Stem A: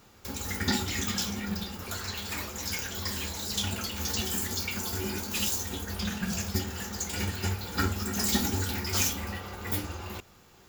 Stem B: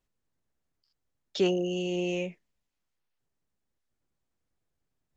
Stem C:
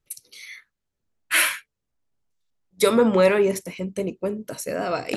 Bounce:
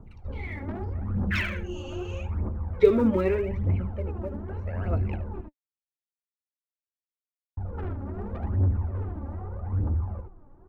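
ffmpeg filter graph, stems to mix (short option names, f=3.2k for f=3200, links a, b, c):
-filter_complex "[0:a]lowpass=f=1.1k:w=0.5412,lowpass=f=1.1k:w=1.3066,aemphasis=mode=reproduction:type=bsi,asoftclip=type=tanh:threshold=-27.5dB,volume=-3dB,asplit=3[a][b][c];[a]atrim=end=5.41,asetpts=PTS-STARTPTS,afade=t=out:st=5.406:d=0.004:c=hsin[d];[b]atrim=start=5.41:end=7.57,asetpts=PTS-STARTPTS,volume=0[e];[c]atrim=start=7.57,asetpts=PTS-STARTPTS,afade=t=in:d=0.004:c=hsin[f];[d][e][f]concat=n=3:v=0:a=1,asplit=2[g][h];[h]volume=-6dB[i];[1:a]bandreject=f=60:t=h:w=6,bandreject=f=120:t=h:w=6,bandreject=f=180:t=h:w=6,acompressor=threshold=-33dB:ratio=6,volume=-5.5dB[j];[2:a]lowpass=f=2.3k:w=0.5412,lowpass=f=2.3k:w=1.3066,volume=-0.5dB,afade=t=out:st=2.99:d=0.67:silence=0.298538,asplit=2[k][l];[l]volume=-16dB[m];[i][m]amix=inputs=2:normalize=0,aecho=0:1:75:1[n];[g][j][k][n]amix=inputs=4:normalize=0,aphaser=in_gain=1:out_gain=1:delay=3.7:decay=0.65:speed=0.81:type=triangular,acrossover=split=440|3000[o][p][q];[p]acompressor=threshold=-37dB:ratio=3[r];[o][r][q]amix=inputs=3:normalize=0"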